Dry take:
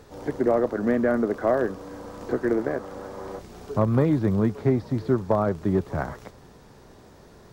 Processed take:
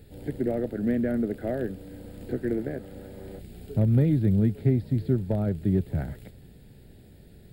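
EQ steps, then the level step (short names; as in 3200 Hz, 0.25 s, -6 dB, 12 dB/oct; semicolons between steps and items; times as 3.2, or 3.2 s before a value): tone controls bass +9 dB, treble +10 dB; fixed phaser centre 2600 Hz, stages 4; -5.5 dB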